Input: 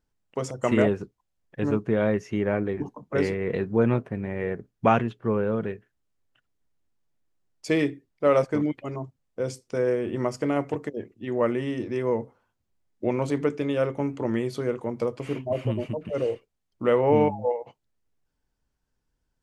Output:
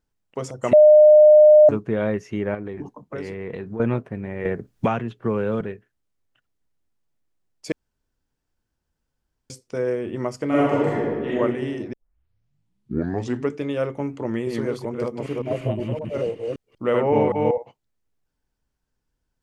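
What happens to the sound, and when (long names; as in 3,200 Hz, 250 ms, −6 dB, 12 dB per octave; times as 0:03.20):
0:00.73–0:01.69: beep over 607 Hz −7 dBFS
0:02.54–0:03.80: downward compressor, threshold −27 dBFS
0:04.45–0:05.61: multiband upward and downward compressor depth 100%
0:07.72–0:09.50: fill with room tone
0:10.47–0:11.35: thrown reverb, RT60 1.7 s, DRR −9 dB
0:11.93: tape start 1.61 s
0:14.28–0:17.58: delay that plays each chunk backwards 190 ms, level −2 dB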